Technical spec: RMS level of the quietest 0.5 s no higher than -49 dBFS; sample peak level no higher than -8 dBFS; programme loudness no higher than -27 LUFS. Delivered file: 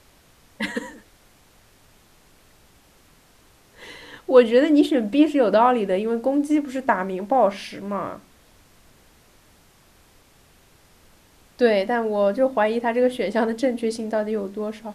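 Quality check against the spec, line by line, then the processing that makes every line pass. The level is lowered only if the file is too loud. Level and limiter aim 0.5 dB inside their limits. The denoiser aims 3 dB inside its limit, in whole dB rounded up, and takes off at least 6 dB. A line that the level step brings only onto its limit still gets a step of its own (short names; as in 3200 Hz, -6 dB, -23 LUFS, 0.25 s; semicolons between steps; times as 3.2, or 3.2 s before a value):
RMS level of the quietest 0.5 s -55 dBFS: OK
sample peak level -2.5 dBFS: fail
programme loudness -21.0 LUFS: fail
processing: gain -6.5 dB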